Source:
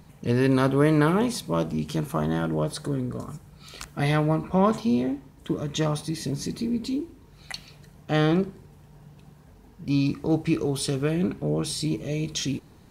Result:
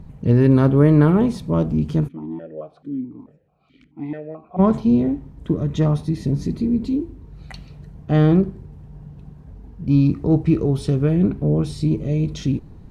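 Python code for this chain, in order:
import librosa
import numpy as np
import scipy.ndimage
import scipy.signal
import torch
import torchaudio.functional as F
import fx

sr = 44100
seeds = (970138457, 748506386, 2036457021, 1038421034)

y = fx.tilt_eq(x, sr, slope=-3.5)
y = fx.vowel_held(y, sr, hz=4.6, at=(2.07, 4.58), fade=0.02)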